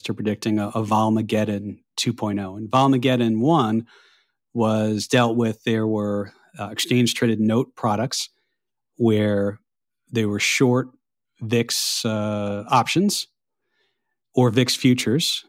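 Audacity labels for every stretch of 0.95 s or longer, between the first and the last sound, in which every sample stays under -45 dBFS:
13.250000	14.350000	silence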